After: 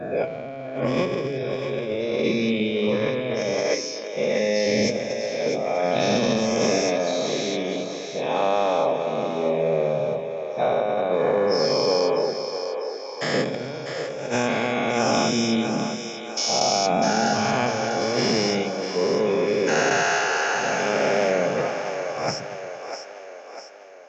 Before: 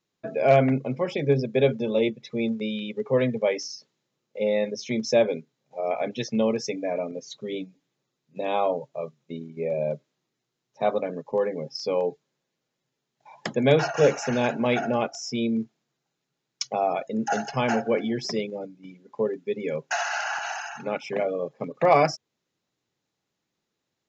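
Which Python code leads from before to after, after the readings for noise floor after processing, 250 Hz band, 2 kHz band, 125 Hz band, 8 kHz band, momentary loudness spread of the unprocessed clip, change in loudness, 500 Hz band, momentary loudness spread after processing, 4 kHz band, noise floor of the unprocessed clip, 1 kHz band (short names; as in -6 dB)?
-36 dBFS, +2.5 dB, +6.0 dB, 0.0 dB, n/a, 14 LU, +2.5 dB, +3.0 dB, 9 LU, +9.0 dB, -82 dBFS, +4.0 dB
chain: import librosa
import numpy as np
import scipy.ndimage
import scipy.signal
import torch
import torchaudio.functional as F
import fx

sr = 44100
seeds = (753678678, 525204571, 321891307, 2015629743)

y = fx.spec_dilate(x, sr, span_ms=480)
y = fx.over_compress(y, sr, threshold_db=-19.0, ratio=-0.5)
y = fx.echo_split(y, sr, split_hz=340.0, low_ms=117, high_ms=648, feedback_pct=52, wet_db=-8.0)
y = y * librosa.db_to_amplitude(-3.5)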